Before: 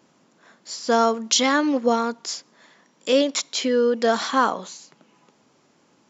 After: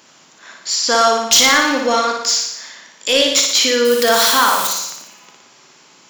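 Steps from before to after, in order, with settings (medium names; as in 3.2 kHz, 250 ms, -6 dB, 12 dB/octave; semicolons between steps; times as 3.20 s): 3.85–4.67 s: zero-crossing glitches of -24 dBFS; tilt shelf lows -8.5 dB, about 870 Hz; saturation -12.5 dBFS, distortion -11 dB; in parallel at -1 dB: peak limiter -23.5 dBFS, peak gain reduction 11 dB; on the sum: flutter echo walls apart 10 m, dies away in 0.8 s; on a send at -11.5 dB: reverberation RT60 0.55 s, pre-delay 21 ms; on the sum: trim +3.5 dB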